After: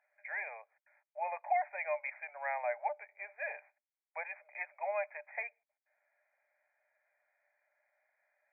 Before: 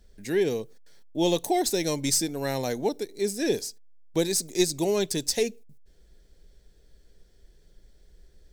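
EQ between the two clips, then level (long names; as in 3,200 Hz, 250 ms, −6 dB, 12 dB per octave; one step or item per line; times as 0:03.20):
Chebyshev high-pass with heavy ripple 580 Hz, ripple 6 dB
linear-phase brick-wall low-pass 2,500 Hz
+1.0 dB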